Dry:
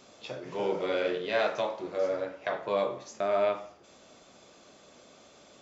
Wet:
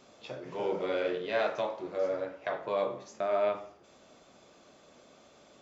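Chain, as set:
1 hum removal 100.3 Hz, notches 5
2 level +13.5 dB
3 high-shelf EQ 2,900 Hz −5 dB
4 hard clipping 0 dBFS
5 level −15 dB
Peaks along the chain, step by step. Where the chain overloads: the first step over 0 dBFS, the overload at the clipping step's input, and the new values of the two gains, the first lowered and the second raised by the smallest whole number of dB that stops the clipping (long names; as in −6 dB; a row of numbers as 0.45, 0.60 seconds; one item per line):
−15.5, −2.0, −2.5, −2.5, −17.5 dBFS
no step passes full scale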